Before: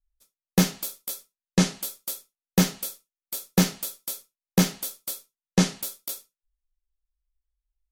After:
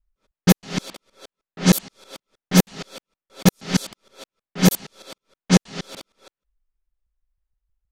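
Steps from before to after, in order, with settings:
reversed piece by piece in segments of 157 ms
low-pass that shuts in the quiet parts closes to 1,900 Hz, open at −16 dBFS
level +5.5 dB

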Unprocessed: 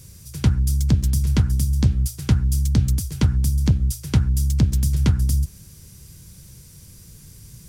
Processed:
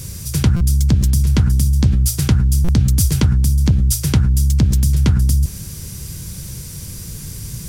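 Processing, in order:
in parallel at +3 dB: compressor whose output falls as the input rises −26 dBFS, ratio −1
on the sum: buffer that repeats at 0:00.56/0:02.64, samples 256, times 7
level +1.5 dB

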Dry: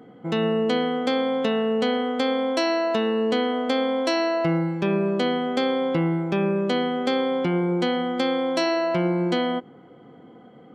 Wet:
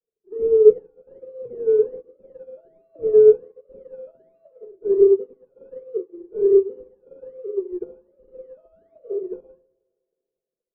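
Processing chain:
three sine waves on the formant tracks
comb filter 1.7 ms, depth 43%
sample-and-hold swept by an LFO 18×, swing 60% 1.3 Hz
dead-zone distortion −47 dBFS
low-pass with resonance 400 Hz, resonance Q 4.3
feedback echo with a high-pass in the loop 159 ms, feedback 69%, high-pass 200 Hz, level −18.5 dB
rectangular room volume 510 cubic metres, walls furnished, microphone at 1.4 metres
expander for the loud parts 2.5 to 1, over −25 dBFS
level −1.5 dB

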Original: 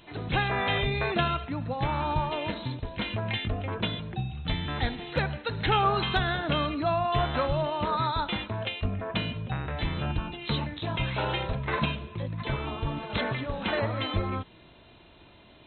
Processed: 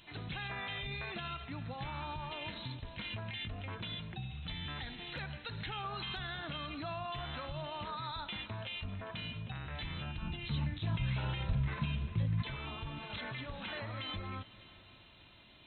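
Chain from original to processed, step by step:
downward compressor 2 to 1, threshold −32 dBFS, peak gain reduction 7 dB
drawn EQ curve 160 Hz 0 dB, 440 Hz −6 dB, 2,800 Hz +5 dB
echo machine with several playback heads 199 ms, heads second and third, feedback 48%, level −23.5 dB
brickwall limiter −25.5 dBFS, peak gain reduction 9.5 dB
0:10.22–0:12.42: bass and treble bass +11 dB, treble −6 dB
level −6.5 dB

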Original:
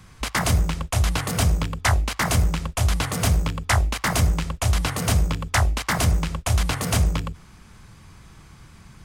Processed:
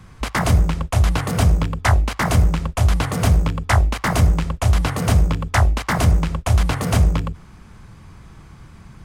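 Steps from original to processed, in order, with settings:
high-shelf EQ 2,100 Hz −8.5 dB
level +5 dB

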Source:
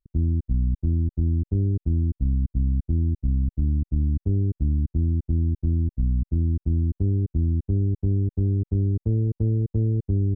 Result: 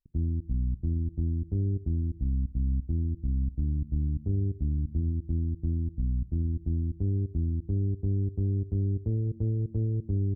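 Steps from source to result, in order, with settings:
on a send at −20 dB: single-tap delay 94 ms −6 dB + convolution reverb RT60 0.90 s, pre-delay 3 ms
on the sum: level −6 dB

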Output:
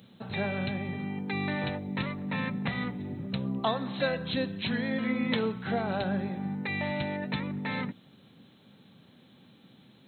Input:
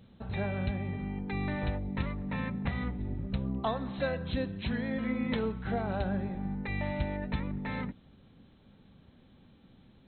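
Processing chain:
high-pass filter 120 Hz 24 dB per octave
high-shelf EQ 3,500 Hz +12 dB
level +2.5 dB

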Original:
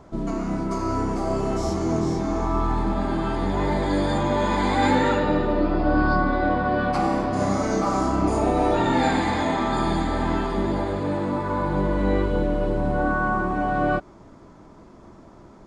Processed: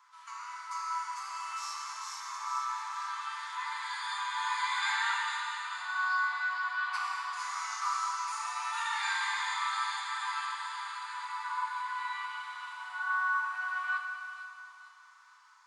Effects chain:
Butterworth high-pass 970 Hz 72 dB per octave
delay with a high-pass on its return 451 ms, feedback 48%, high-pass 4,500 Hz, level −3 dB
feedback delay network reverb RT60 3 s, high-frequency decay 0.8×, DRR 1 dB
level −5.5 dB

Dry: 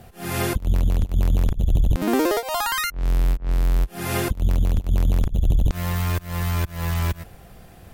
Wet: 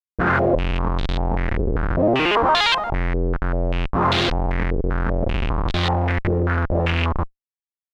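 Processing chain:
far-end echo of a speakerphone 190 ms, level −17 dB
comparator with hysteresis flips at −32 dBFS
low-pass on a step sequencer 5.1 Hz 440–3,700 Hz

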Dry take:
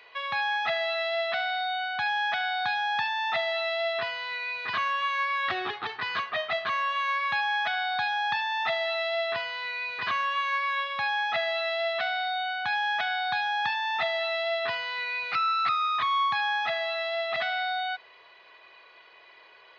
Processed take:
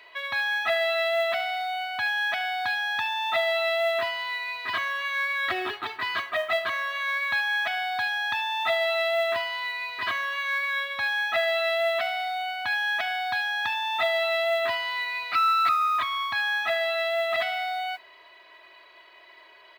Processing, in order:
comb filter 3.1 ms, depth 68%
noise that follows the level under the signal 29 dB

